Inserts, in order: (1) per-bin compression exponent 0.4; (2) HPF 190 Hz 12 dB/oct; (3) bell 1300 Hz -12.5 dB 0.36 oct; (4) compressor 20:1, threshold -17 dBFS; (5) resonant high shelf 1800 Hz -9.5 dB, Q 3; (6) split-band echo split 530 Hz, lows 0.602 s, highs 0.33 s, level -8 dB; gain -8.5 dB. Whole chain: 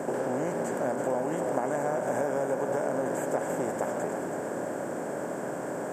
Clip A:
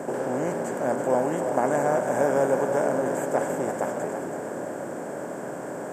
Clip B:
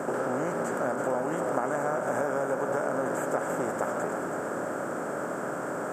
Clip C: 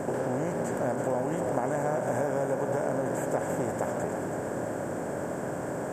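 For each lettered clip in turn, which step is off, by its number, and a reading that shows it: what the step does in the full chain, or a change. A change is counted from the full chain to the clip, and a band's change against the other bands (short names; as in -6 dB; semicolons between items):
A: 4, mean gain reduction 2.5 dB; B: 3, 2 kHz band +4.0 dB; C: 2, 125 Hz band +6.0 dB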